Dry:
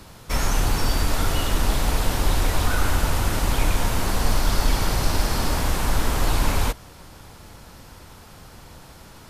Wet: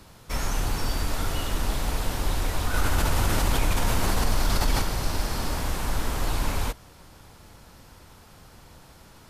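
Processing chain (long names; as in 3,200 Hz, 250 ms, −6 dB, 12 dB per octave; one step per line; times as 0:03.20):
0:02.74–0:04.82: envelope flattener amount 70%
level −5.5 dB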